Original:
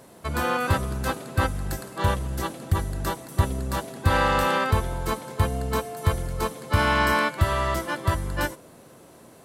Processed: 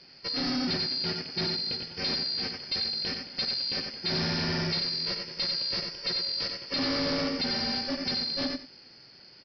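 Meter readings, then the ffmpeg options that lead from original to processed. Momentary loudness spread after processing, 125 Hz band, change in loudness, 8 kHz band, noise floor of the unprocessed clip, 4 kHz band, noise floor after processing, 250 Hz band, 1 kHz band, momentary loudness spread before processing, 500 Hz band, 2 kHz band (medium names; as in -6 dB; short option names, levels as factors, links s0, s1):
3 LU, -14.0 dB, -3.0 dB, -11.0 dB, -50 dBFS, +9.0 dB, -53 dBFS, -2.5 dB, -15.5 dB, 9 LU, -9.0 dB, -9.5 dB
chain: -filter_complex "[0:a]afftfilt=real='real(if(lt(b,272),68*(eq(floor(b/68),0)*1+eq(floor(b/68),1)*2+eq(floor(b/68),2)*3+eq(floor(b/68),3)*0)+mod(b,68),b),0)':imag='imag(if(lt(b,272),68*(eq(floor(b/68),0)*1+eq(floor(b/68),1)*2+eq(floor(b/68),2)*3+eq(floor(b/68),3)*0)+mod(b,68),b),0)':win_size=2048:overlap=0.75,aeval=exprs='val(0)*sin(2*PI*270*n/s)':c=same,adynamicequalizer=threshold=0.00224:dfrequency=250:dqfactor=3.9:tfrequency=250:tqfactor=3.9:attack=5:release=100:ratio=0.375:range=4:mode=boostabove:tftype=bell,asplit=2[s0][s1];[s1]aecho=0:1:92|184:0.422|0.0633[s2];[s0][s2]amix=inputs=2:normalize=0,asplit=2[s3][s4];[s4]highpass=f=720:p=1,volume=5.62,asoftclip=type=tanh:threshold=0.398[s5];[s3][s5]amix=inputs=2:normalize=0,lowpass=f=1100:p=1,volume=0.501,equalizer=f=125:t=o:w=1:g=10,equalizer=f=1000:t=o:w=1:g=-9,equalizer=f=2000:t=o:w=1:g=3,aresample=11025,asoftclip=type=hard:threshold=0.0398,aresample=44100,volume=1.33"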